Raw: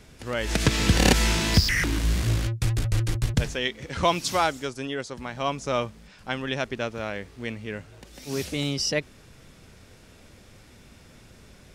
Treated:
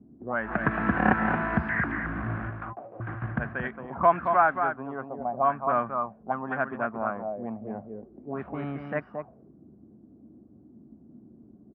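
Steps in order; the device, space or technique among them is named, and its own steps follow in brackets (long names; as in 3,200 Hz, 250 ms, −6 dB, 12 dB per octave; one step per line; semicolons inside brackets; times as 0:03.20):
0:02.50–0:03.00: high-pass filter 580 Hz 12 dB per octave
single-tap delay 224 ms −6.5 dB
envelope filter bass rig (envelope-controlled low-pass 270–1,600 Hz up, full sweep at −24 dBFS; loudspeaker in its box 71–2,300 Hz, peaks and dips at 92 Hz −9 dB, 220 Hz +8 dB, 480 Hz −5 dB, 710 Hz +10 dB, 1,100 Hz +6 dB, 2,000 Hz −5 dB)
level −6.5 dB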